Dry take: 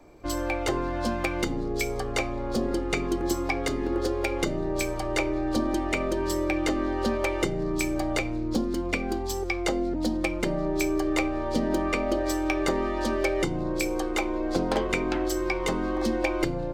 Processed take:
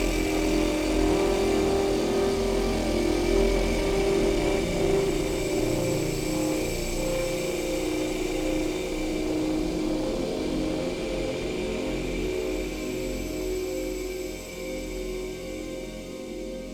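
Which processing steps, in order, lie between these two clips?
fade-out on the ending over 3.89 s
flat-topped bell 1,200 Hz −12.5 dB
extreme stretch with random phases 4.8×, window 1.00 s, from 0:12.49
asymmetric clip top −31.5 dBFS
on a send: feedback delay with all-pass diffusion 1,102 ms, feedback 48%, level −8 dB
on the sum: level +5 dB

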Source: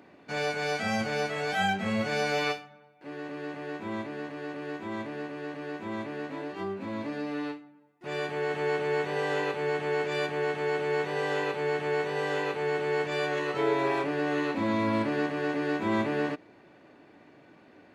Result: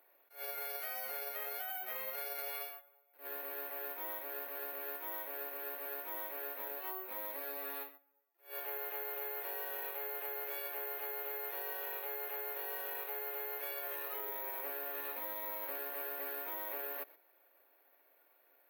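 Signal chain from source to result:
noise gate −45 dBFS, range −11 dB
wrong playback speed 25 fps video run at 24 fps
high-pass filter 480 Hz 24 dB per octave
brickwall limiter −28 dBFS, peak gain reduction 11.5 dB
bad sample-rate conversion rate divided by 3×, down filtered, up zero stuff
downward compressor 4 to 1, threshold −34 dBFS, peak gain reduction 8 dB
level that may rise only so fast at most 200 dB per second
level −3 dB

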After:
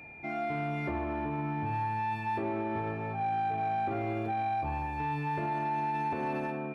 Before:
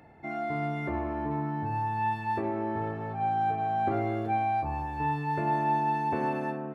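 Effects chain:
brickwall limiter −23.5 dBFS, peak gain reduction 6 dB
steady tone 2,400 Hz −47 dBFS
soft clipping −24 dBFS, distortion −22 dB

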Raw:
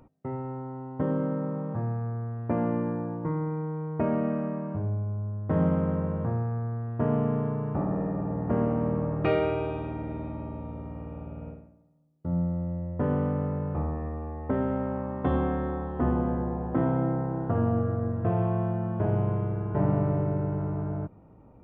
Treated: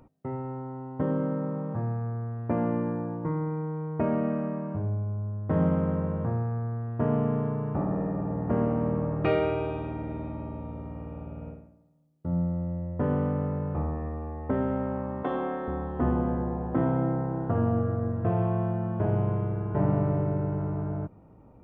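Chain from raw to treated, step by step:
0:15.23–0:15.68: high-pass filter 320 Hz 12 dB per octave

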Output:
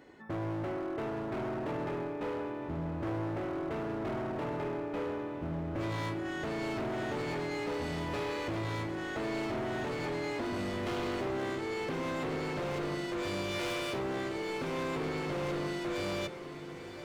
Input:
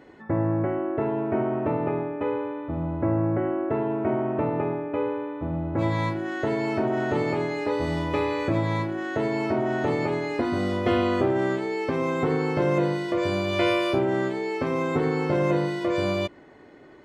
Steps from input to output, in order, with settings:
high-shelf EQ 3,700 Hz +8 dB
hard clipping −26.5 dBFS, distortion −8 dB
feedback delay with all-pass diffusion 959 ms, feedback 61%, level −11.5 dB
level −6.5 dB

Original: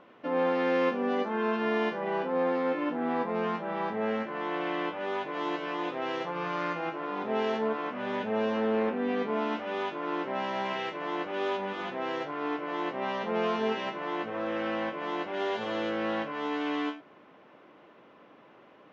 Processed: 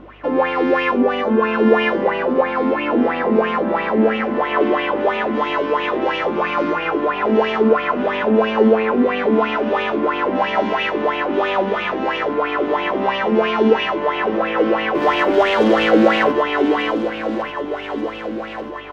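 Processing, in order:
in parallel at −2 dB: brickwall limiter −27 dBFS, peak gain reduction 10 dB
0:14.95–0:16.32: on the sum: leveller curve on the samples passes 2
mains hum 50 Hz, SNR 23 dB
repeating echo 1,188 ms, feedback 58%, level −10 dB
on a send at −11 dB: convolution reverb RT60 1.6 s, pre-delay 3 ms
on the sum: auto-filter bell 3 Hz 240–2,800 Hz +16 dB
level +2 dB

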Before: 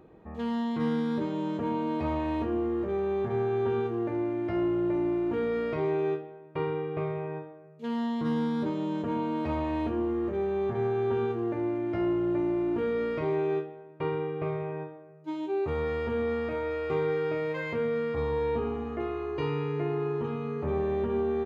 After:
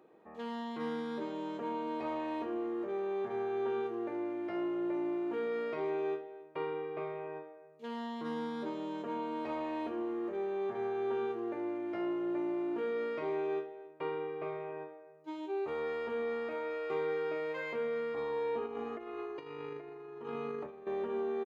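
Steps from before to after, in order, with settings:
high-pass filter 340 Hz 12 dB per octave
0:18.66–0:20.87: compressor whose output falls as the input rises −37 dBFS, ratio −0.5
single-tap delay 275 ms −22 dB
level −4.5 dB

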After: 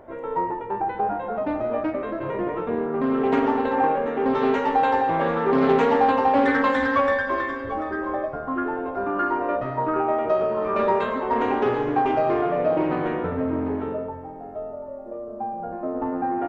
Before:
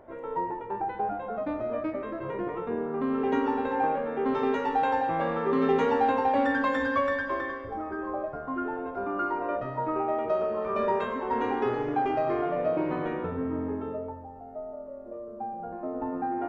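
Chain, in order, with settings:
single-tap delay 740 ms −14.5 dB
highs frequency-modulated by the lows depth 0.22 ms
level +5.5 dB

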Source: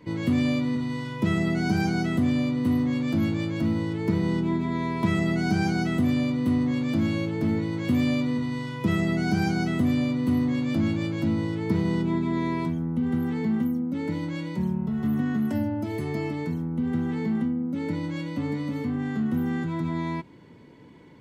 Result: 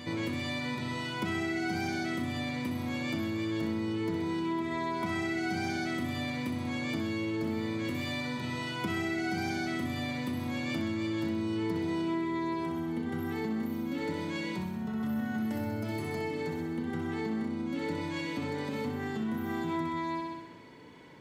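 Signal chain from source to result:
low-shelf EQ 460 Hz −10 dB
flutter between parallel walls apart 10.9 metres, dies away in 0.85 s
downward compressor, threshold −33 dBFS, peak gain reduction 9 dB
backwards echo 443 ms −10 dB
level +2.5 dB

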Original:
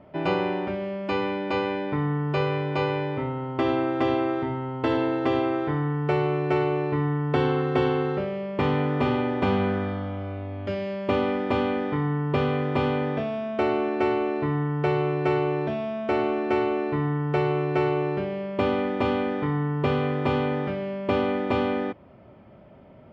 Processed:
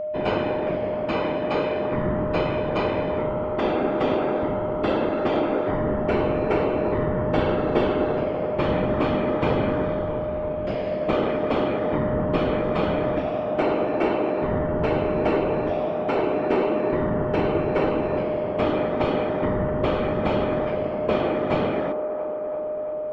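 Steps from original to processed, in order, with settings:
random phases in short frames
delay with a band-pass on its return 337 ms, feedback 73%, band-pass 660 Hz, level −8 dB
steady tone 610 Hz −26 dBFS

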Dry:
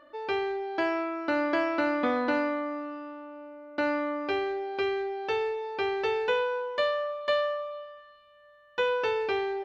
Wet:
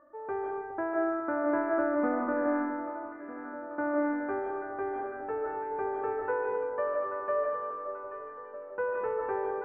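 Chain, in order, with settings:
Butterworth low-pass 1,600 Hz 36 dB per octave
delay that swaps between a low-pass and a high-pass 417 ms, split 860 Hz, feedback 78%, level −9 dB
comb and all-pass reverb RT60 0.87 s, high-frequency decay 0.7×, pre-delay 110 ms, DRR −0.5 dB
level −4.5 dB

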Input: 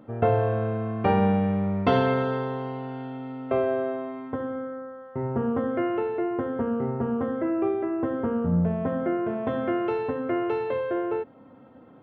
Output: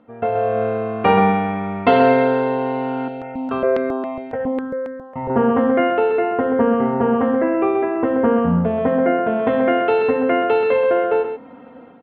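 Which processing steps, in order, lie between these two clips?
low-pass filter 3,900 Hz 24 dB per octave
low-shelf EQ 390 Hz −8.5 dB
comb filter 4.2 ms, depth 50%
automatic gain control gain up to 12 dB
single-tap delay 130 ms −8 dB
0:03.08–0:05.30: step-sequenced phaser 7.3 Hz 300–3,000 Hz

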